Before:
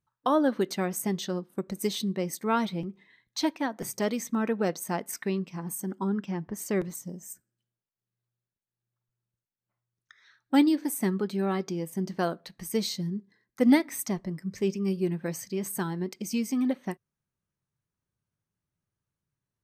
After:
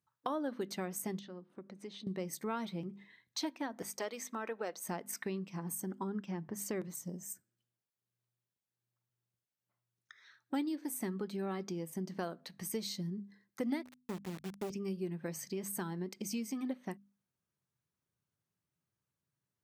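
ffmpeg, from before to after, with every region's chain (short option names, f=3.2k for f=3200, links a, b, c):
-filter_complex "[0:a]asettb=1/sr,asplit=3[a][b][c];[a]atrim=end=1.194[d];[b]atrim=start=1.19:end=2.07,asetpts=PTS-STARTPTS,afade=t=in:d=0.004:c=qsin,afade=t=out:st=0.876:d=0.004:c=qsin,highpass=140,lowpass=3.4k,acompressor=threshold=-53dB:ratio=2:attack=3.2:release=140:knee=1:detection=peak[e];[c]atrim=start=2.066[f];[d][e]acrossfade=d=0.004:c1=hsin:c2=qsin[g];[g][f]acrossfade=d=0.004:c1=qsin:c2=hsin,asettb=1/sr,asplit=3[h][i][j];[h]atrim=end=3.824[k];[i]atrim=start=3.82:end=4.84,asetpts=PTS-STARTPTS,afade=t=in:d=0.004:c=qsin,afade=t=out:st=1.016:d=0.004:c=qsin,highpass=480,highshelf=f=6.9k:g=-6[l];[j]atrim=start=4.836[m];[k][l]acrossfade=d=0.004:c1=hsin:c2=qsin[n];[n][m]acrossfade=d=0.004:c1=qsin:c2=hsin,asettb=1/sr,asplit=3[o][p][q];[o]atrim=end=13.834[r];[p]atrim=start=13.83:end=14.7,asetpts=PTS-STARTPTS,afade=t=in:d=0.004:c=qsin,afade=t=out:st=0.866:d=0.004:c=qsin,lowpass=1.7k,acrusher=bits=4:dc=4:mix=0:aa=0.000001[s];[q]atrim=start=14.696[t];[r][s]acrossfade=d=0.004:c1=hsin:c2=qsin[u];[u][t]acrossfade=d=0.004:c1=qsin:c2=hsin,highpass=94,bandreject=f=50:t=h:w=6,bandreject=f=100:t=h:w=6,bandreject=f=150:t=h:w=6,bandreject=f=200:t=h:w=6,bandreject=f=250:t=h:w=6,acompressor=threshold=-36dB:ratio=3,volume=-1.5dB"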